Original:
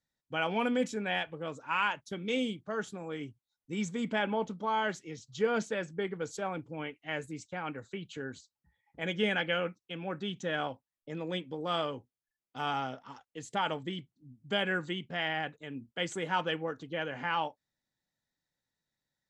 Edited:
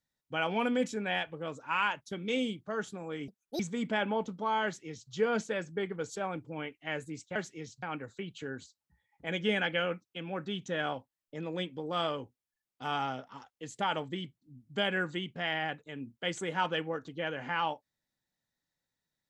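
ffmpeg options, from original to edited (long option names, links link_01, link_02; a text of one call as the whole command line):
ffmpeg -i in.wav -filter_complex "[0:a]asplit=5[link_01][link_02][link_03][link_04][link_05];[link_01]atrim=end=3.284[link_06];[link_02]atrim=start=3.28:end=3.81,asetpts=PTS-STARTPTS,asetrate=74088,aresample=44100,atrim=end_sample=13912,asetpts=PTS-STARTPTS[link_07];[link_03]atrim=start=3.806:end=7.572[link_08];[link_04]atrim=start=4.858:end=5.332[link_09];[link_05]atrim=start=7.568[link_10];[link_06][link_07]acrossfade=duration=0.004:curve1=hsin:curve2=hsin[link_11];[link_11][link_08]acrossfade=duration=0.004:curve1=hsin:curve2=hsin[link_12];[link_12][link_09]acrossfade=duration=0.004:curve1=hsin:curve2=hsin[link_13];[link_13][link_10]acrossfade=duration=0.004:curve1=hsin:curve2=hsin" out.wav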